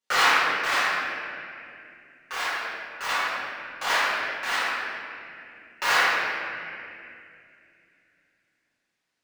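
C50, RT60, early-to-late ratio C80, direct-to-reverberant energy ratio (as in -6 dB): -6.0 dB, 2.5 s, -3.0 dB, -15.5 dB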